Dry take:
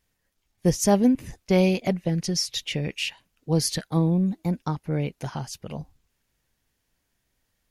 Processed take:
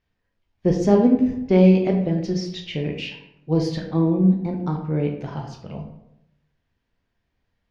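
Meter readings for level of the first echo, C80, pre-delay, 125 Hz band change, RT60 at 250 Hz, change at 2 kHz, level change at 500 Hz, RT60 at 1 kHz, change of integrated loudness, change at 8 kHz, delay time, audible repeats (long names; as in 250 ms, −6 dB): no echo audible, 9.0 dB, 14 ms, +3.5 dB, 0.95 s, −2.0 dB, +5.0 dB, 0.75 s, +4.5 dB, below −10 dB, no echo audible, no echo audible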